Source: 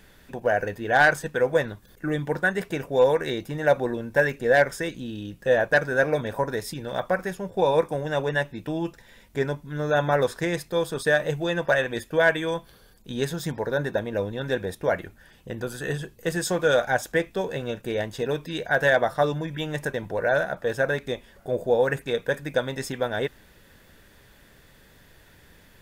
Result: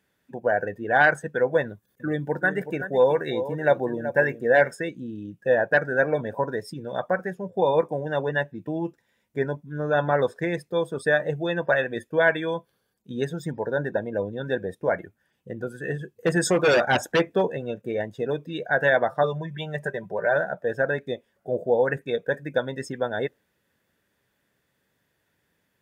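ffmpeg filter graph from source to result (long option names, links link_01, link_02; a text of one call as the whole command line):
ffmpeg -i in.wav -filter_complex "[0:a]asettb=1/sr,asplit=3[link_01][link_02][link_03];[link_01]atrim=end=1.624[link_04];[link_02]atrim=start=1.62:end=4.75,asetpts=PTS-STARTPTS,afade=type=in:duration=0.004:curve=qsin,afade=type=out:start_time=3.126:duration=0.004:curve=qsin,highshelf=frequency=9500:gain=7,aecho=1:1:376:0.299,atrim=end_sample=138033[link_05];[link_03]atrim=start=4.746[link_06];[link_04][link_05]acrossfade=duration=0.004:curve1=hsin:curve2=qsin[link_07];[link_07][link_06]acrossfade=duration=0.004:curve1=qsin:curve2=hsin,asettb=1/sr,asplit=3[link_08][link_09][link_10];[link_08]atrim=end=16.164[link_11];[link_09]atrim=start=16.16:end=17.47,asetpts=PTS-STARTPTS,afade=type=in:duration=0.004:curve=qsin,afade=type=out:start_time=1.306:duration=0.004:curve=qsin,highshelf=frequency=3500:gain=-3,acontrast=53,aeval=exprs='0.224*(abs(mod(val(0)/0.224+3,4)-2)-1)':channel_layout=same[link_12];[link_10]atrim=start=17.466[link_13];[link_11][link_12]acrossfade=duration=0.004:curve1=hsin:curve2=qsin[link_14];[link_14][link_13]acrossfade=duration=0.004:curve1=qsin:curve2=hsin,asettb=1/sr,asplit=3[link_15][link_16][link_17];[link_15]atrim=end=19.234[link_18];[link_16]atrim=start=19.23:end=20.36,asetpts=PTS-STARTPTS,afade=type=in:duration=0.004:curve=qsin,afade=type=out:start_time=1.126:duration=0.004:curve=qsin,equalizer=frequency=270:width=3.2:gain=-10.5,aecho=1:1:5.1:0.4,atrim=end_sample=49833[link_19];[link_17]atrim=start=20.356[link_20];[link_18][link_19]acrossfade=duration=0.004:curve1=hsin:curve2=qsin[link_21];[link_21][link_20]acrossfade=duration=0.004:curve1=qsin:curve2=hsin,highpass=110,equalizer=frequency=4100:width=2.3:gain=-3,afftdn=noise_reduction=17:noise_floor=-34" out.wav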